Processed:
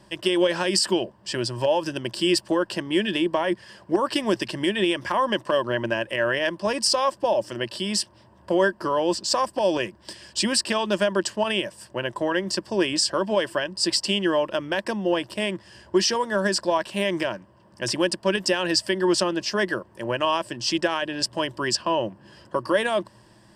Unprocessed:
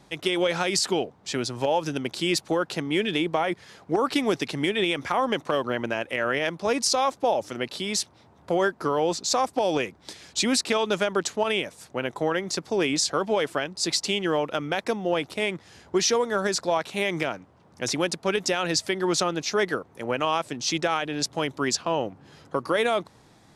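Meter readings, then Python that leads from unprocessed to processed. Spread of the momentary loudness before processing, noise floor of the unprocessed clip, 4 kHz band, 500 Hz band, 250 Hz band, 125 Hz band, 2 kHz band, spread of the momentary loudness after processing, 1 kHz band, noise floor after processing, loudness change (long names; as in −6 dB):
6 LU, −57 dBFS, +2.5 dB, +1.5 dB, +2.5 dB, +0.5 dB, +1.5 dB, 7 LU, +0.5 dB, −55 dBFS, +1.5 dB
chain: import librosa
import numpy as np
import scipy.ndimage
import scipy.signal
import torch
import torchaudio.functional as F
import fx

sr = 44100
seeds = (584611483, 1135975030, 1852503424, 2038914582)

y = fx.ripple_eq(x, sr, per_octave=1.3, db=11)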